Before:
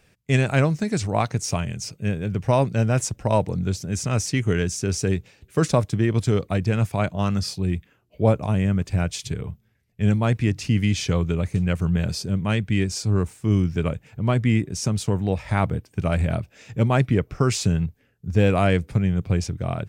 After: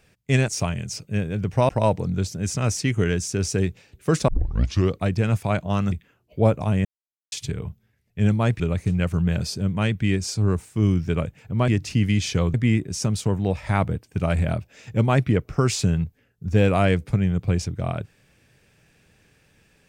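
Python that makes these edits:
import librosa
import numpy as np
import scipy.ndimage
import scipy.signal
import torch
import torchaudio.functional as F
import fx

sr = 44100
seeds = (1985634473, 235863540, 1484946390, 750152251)

y = fx.edit(x, sr, fx.cut(start_s=0.48, length_s=0.91),
    fx.cut(start_s=2.6, length_s=0.58),
    fx.tape_start(start_s=5.77, length_s=0.63),
    fx.cut(start_s=7.41, length_s=0.33),
    fx.silence(start_s=8.67, length_s=0.47),
    fx.move(start_s=10.42, length_s=0.86, to_s=14.36), tone=tone)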